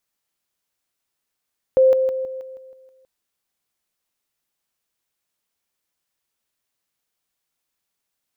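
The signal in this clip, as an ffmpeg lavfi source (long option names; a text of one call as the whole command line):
ffmpeg -f lavfi -i "aevalsrc='pow(10,(-10-6*floor(t/0.16))/20)*sin(2*PI*523*t)':duration=1.28:sample_rate=44100" out.wav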